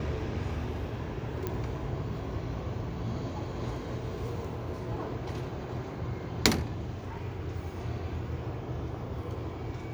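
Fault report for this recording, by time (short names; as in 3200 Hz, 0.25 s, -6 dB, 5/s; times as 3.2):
1.47 pop -18 dBFS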